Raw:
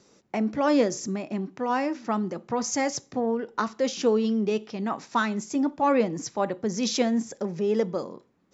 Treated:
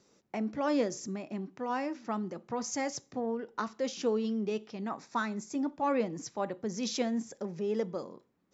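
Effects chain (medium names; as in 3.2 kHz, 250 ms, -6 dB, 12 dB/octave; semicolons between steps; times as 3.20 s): 4.89–5.53 s: peaking EQ 3 kHz -10 dB 0.26 oct; trim -7.5 dB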